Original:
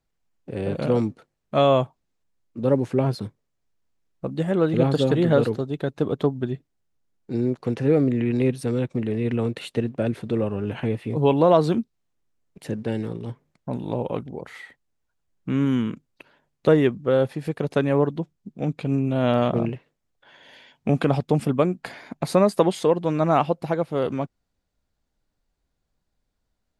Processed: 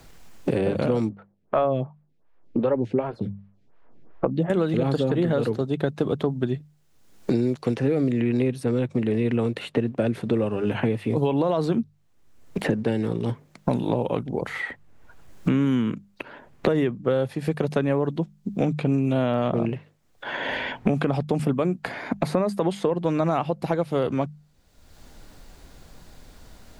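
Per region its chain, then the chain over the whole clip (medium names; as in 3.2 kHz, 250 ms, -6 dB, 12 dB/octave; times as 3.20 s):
1.09–4.50 s: low-pass 1.4 kHz + lamp-driven phase shifter 2.7 Hz
whole clip: hum notches 50/100/150/200 Hz; peak limiter -12 dBFS; three bands compressed up and down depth 100%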